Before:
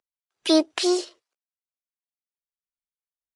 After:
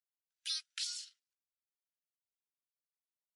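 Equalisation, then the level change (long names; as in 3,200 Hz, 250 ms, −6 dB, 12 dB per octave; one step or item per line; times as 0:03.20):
Chebyshev high-pass filter 1,400 Hz, order 6
parametric band 1,800 Hz −7.5 dB 1.6 octaves
−8.5 dB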